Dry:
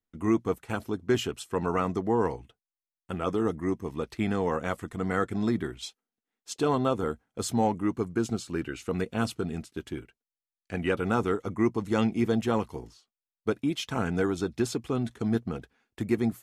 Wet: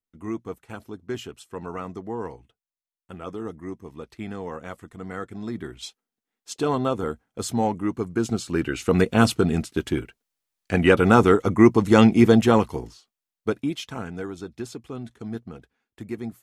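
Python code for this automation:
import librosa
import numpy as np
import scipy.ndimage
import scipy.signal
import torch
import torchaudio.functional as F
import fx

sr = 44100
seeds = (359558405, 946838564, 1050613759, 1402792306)

y = fx.gain(x, sr, db=fx.line((5.45, -6.0), (5.85, 2.0), (8.02, 2.0), (8.98, 11.0), (12.27, 11.0), (13.65, 2.0), (14.12, -6.0)))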